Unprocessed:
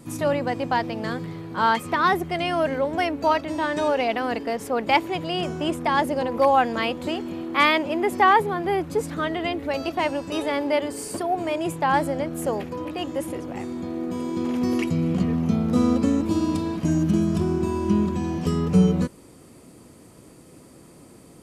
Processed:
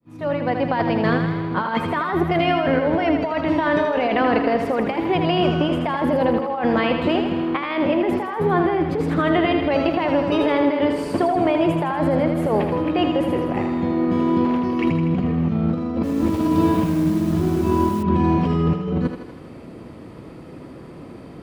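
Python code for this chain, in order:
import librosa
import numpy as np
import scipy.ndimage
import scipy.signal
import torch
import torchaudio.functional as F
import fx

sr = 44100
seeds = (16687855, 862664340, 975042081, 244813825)

y = fx.fade_in_head(x, sr, length_s=0.95)
y = fx.high_shelf(y, sr, hz=6000.0, db=9.5)
y = fx.over_compress(y, sr, threshold_db=-26.0, ratio=-1.0)
y = fx.air_absorb(y, sr, metres=370.0)
y = fx.echo_thinned(y, sr, ms=80, feedback_pct=63, hz=280.0, wet_db=-6)
y = fx.echo_crushed(y, sr, ms=102, feedback_pct=80, bits=7, wet_db=-9, at=(15.93, 18.03))
y = y * librosa.db_to_amplitude(7.0)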